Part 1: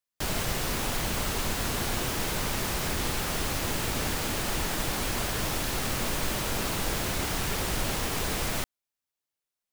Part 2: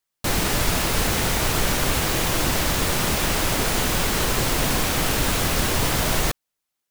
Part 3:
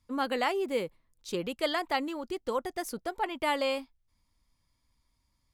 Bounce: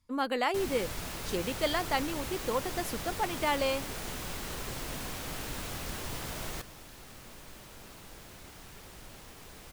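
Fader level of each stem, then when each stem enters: −20.0, −17.0, −0.5 decibels; 1.25, 0.30, 0.00 seconds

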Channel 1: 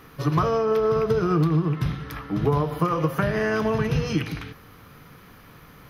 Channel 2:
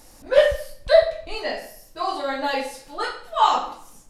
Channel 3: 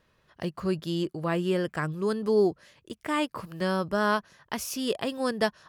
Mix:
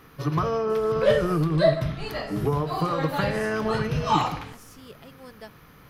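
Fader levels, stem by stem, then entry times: −3.0, −5.5, −17.5 decibels; 0.00, 0.70, 0.00 seconds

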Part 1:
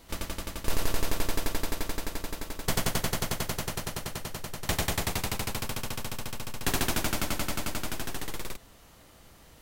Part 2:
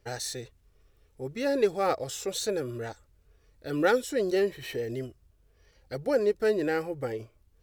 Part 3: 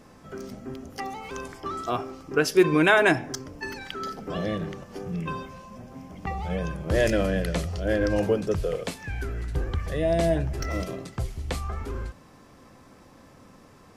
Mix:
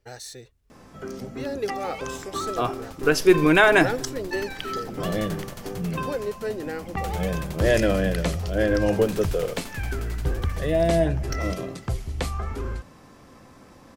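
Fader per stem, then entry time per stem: −10.5, −4.5, +2.5 decibels; 2.35, 0.00, 0.70 seconds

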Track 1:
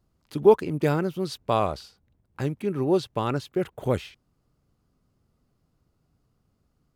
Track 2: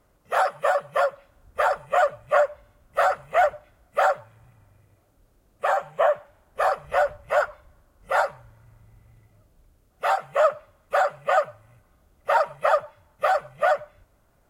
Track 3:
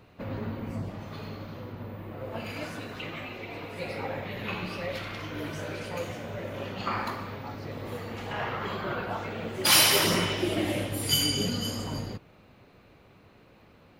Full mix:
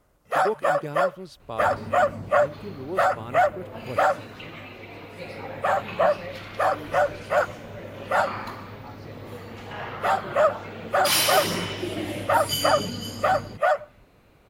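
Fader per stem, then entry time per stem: −11.0, −0.5, −2.0 decibels; 0.00, 0.00, 1.40 seconds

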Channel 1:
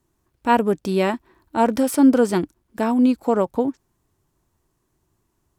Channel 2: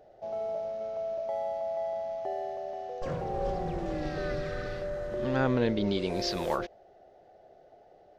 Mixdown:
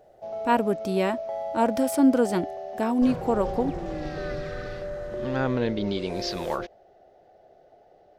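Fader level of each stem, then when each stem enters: −5.0, +1.0 decibels; 0.00, 0.00 seconds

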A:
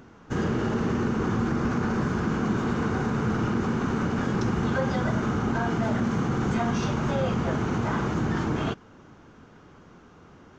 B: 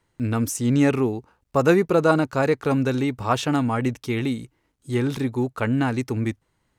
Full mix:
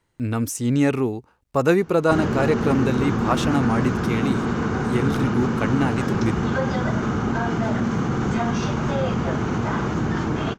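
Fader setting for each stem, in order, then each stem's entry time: +3.0, −0.5 decibels; 1.80, 0.00 seconds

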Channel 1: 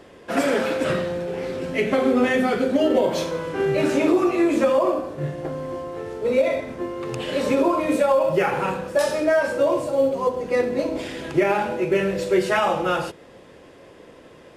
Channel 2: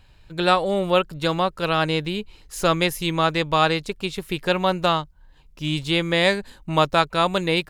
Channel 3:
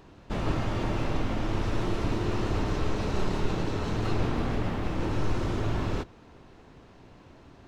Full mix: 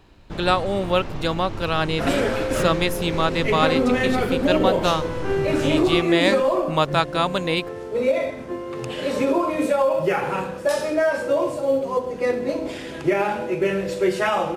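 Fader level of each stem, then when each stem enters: −1.0, −1.5, −3.0 decibels; 1.70, 0.00, 0.00 seconds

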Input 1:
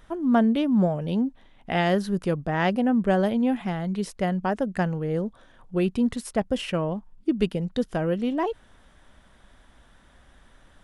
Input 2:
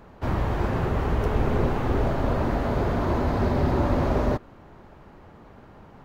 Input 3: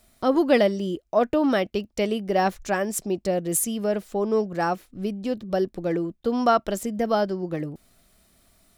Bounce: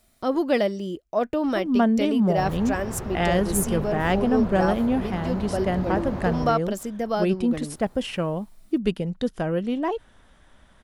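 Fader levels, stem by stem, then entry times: 0.0, −8.5, −3.0 decibels; 1.45, 2.15, 0.00 seconds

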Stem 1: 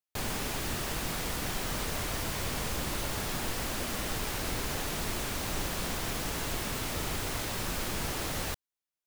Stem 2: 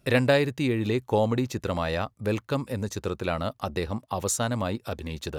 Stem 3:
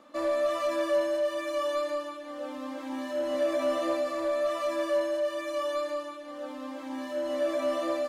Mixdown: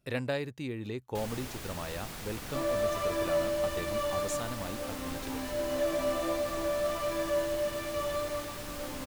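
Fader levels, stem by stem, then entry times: −8.0, −11.5, −3.0 decibels; 1.00, 0.00, 2.40 seconds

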